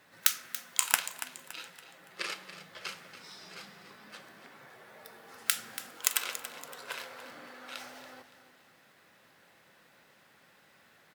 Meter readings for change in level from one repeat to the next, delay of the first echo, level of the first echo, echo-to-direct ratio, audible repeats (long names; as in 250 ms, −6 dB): −8.5 dB, 283 ms, −13.0 dB, −12.5 dB, 3